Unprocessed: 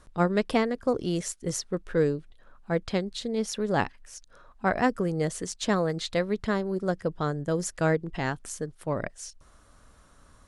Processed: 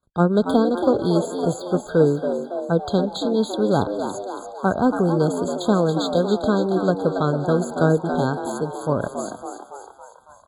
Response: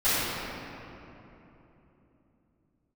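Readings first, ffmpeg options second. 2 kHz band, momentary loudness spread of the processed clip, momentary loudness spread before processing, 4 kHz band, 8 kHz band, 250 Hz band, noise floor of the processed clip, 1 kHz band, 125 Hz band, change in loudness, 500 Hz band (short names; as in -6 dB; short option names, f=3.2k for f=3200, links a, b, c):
+0.5 dB, 10 LU, 9 LU, +4.0 dB, -1.5 dB, +8.5 dB, -48 dBFS, +7.0 dB, +8.0 dB, +7.5 dB, +8.0 dB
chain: -filter_complex "[0:a]highpass=72,deesser=0.85,agate=range=-32dB:threshold=-56dB:ratio=16:detection=peak,acrossover=split=460[a][b];[b]acompressor=threshold=-28dB:ratio=4[c];[a][c]amix=inputs=2:normalize=0,asplit=8[d][e][f][g][h][i][j][k];[e]adelay=279,afreqshift=91,volume=-7.5dB[l];[f]adelay=558,afreqshift=182,volume=-12.5dB[m];[g]adelay=837,afreqshift=273,volume=-17.6dB[n];[h]adelay=1116,afreqshift=364,volume=-22.6dB[o];[i]adelay=1395,afreqshift=455,volume=-27.6dB[p];[j]adelay=1674,afreqshift=546,volume=-32.7dB[q];[k]adelay=1953,afreqshift=637,volume=-37.7dB[r];[d][l][m][n][o][p][q][r]amix=inputs=8:normalize=0,asplit=2[s][t];[1:a]atrim=start_sample=2205,afade=t=out:st=0.33:d=0.01,atrim=end_sample=14994,adelay=135[u];[t][u]afir=irnorm=-1:irlink=0,volume=-34.5dB[v];[s][v]amix=inputs=2:normalize=0,afftfilt=real='re*eq(mod(floor(b*sr/1024/1600),2),0)':imag='im*eq(mod(floor(b*sr/1024/1600),2),0)':win_size=1024:overlap=0.75,volume=8dB"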